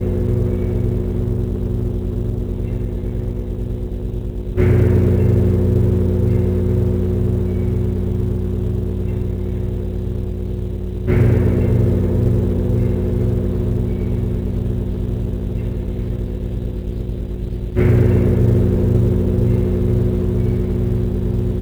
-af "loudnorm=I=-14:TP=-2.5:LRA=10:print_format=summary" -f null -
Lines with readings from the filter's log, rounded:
Input Integrated:    -18.9 LUFS
Input True Peak:      -4.4 dBTP
Input LRA:             5.9 LU
Input Threshold:     -28.9 LUFS